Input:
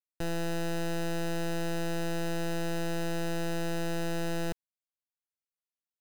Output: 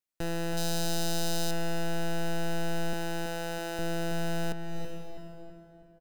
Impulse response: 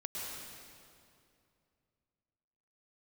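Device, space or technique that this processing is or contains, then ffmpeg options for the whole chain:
ducked reverb: -filter_complex "[0:a]asettb=1/sr,asplit=3[link_01][link_02][link_03];[link_01]atrim=end=2.934[link_04];[link_02]atrim=start=2.93:end=3.79,asetpts=PTS-STARTPTS,afade=type=in:duration=0.004:curve=qsin,afade=type=out:start_time=0.856:duration=0.004:curve=qsin,highpass=290[link_05];[link_03]atrim=start=3.786[link_06];[link_04][link_05]acrossfade=duration=0.004:curve1=hsin:curve2=qsin[link_07];[link_07][link_06]acrossfade=duration=0.004:curve1=qsin:curve2=hsin,asplit=3[link_08][link_09][link_10];[1:a]atrim=start_sample=2205[link_11];[link_09][link_11]afir=irnorm=-1:irlink=0[link_12];[link_10]apad=whole_len=264734[link_13];[link_12][link_13]sidechaincompress=threshold=-54dB:ratio=8:attack=16:release=214,volume=-2dB[link_14];[link_08][link_14]amix=inputs=2:normalize=0,asettb=1/sr,asplit=3[link_15][link_16][link_17];[link_15]atrim=end=0.574[link_18];[link_16]atrim=start=0.57:end=1.51,asetpts=PTS-STARTPTS,afade=type=in:duration=0.004:curve=qsin,afade=type=out:start_time=0.936:duration=0.004:curve=qsin,highshelf=frequency=3100:width_type=q:width=1.5:gain=9[link_19];[link_17]atrim=start=1.506[link_20];[link_18][link_19]acrossfade=duration=0.004:curve1=hsin:curve2=qsin[link_21];[link_21][link_20]acrossfade=duration=0.004:curve1=qsin:curve2=hsin,asplit=2[link_22][link_23];[link_23]adelay=326,lowpass=frequency=2300:poles=1,volume=-8dB,asplit=2[link_24][link_25];[link_25]adelay=326,lowpass=frequency=2300:poles=1,volume=0.53,asplit=2[link_26][link_27];[link_27]adelay=326,lowpass=frequency=2300:poles=1,volume=0.53,asplit=2[link_28][link_29];[link_29]adelay=326,lowpass=frequency=2300:poles=1,volume=0.53,asplit=2[link_30][link_31];[link_31]adelay=326,lowpass=frequency=2300:poles=1,volume=0.53,asplit=2[link_32][link_33];[link_33]adelay=326,lowpass=frequency=2300:poles=1,volume=0.53[link_34];[link_22][link_24][link_26][link_28][link_30][link_32][link_34]amix=inputs=7:normalize=0"

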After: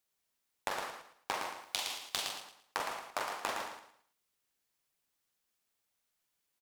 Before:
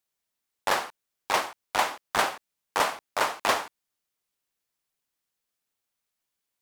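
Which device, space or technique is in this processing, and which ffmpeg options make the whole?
serial compression, leveller first: -filter_complex "[0:a]asettb=1/sr,asplit=3[link_01][link_02][link_03];[link_01]atrim=end=1.614[link_04];[link_02]atrim=start=1.61:end=2.29,asetpts=PTS-STARTPTS,afade=type=in:duration=0.004:curve=qsin,afade=type=out:start_time=0.676:duration=0.004:curve=qsin,highshelf=frequency=2300:width_type=q:width=1.5:gain=12[link_05];[link_03]atrim=start=2.286[link_06];[link_04][link_05]acrossfade=duration=0.004:curve1=hsin:curve2=qsin[link_07];[link_07][link_06]acrossfade=duration=0.004:curve1=qsin:curve2=hsin,acompressor=threshold=-23dB:ratio=2.5,acompressor=threshold=-33dB:ratio=10,aecho=1:1:113|226|339|452:0.501|0.15|0.0451|0.0135"

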